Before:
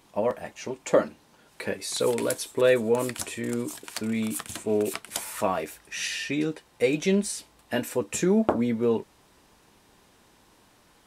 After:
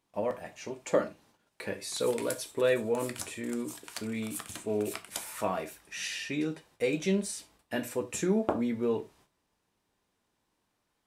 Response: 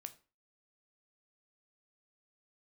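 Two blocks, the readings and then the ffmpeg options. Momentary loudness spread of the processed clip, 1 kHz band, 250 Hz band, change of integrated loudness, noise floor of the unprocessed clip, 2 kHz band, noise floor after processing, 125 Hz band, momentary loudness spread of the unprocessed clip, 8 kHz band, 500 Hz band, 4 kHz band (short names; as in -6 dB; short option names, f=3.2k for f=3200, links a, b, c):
11 LU, -5.5 dB, -5.5 dB, -5.5 dB, -60 dBFS, -5.0 dB, -79 dBFS, -5.0 dB, 11 LU, -5.5 dB, -5.5 dB, -5.5 dB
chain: -filter_complex "[0:a]agate=range=-14dB:threshold=-55dB:ratio=16:detection=peak[a];[1:a]atrim=start_sample=2205,atrim=end_sample=4410[b];[a][b]afir=irnorm=-1:irlink=0"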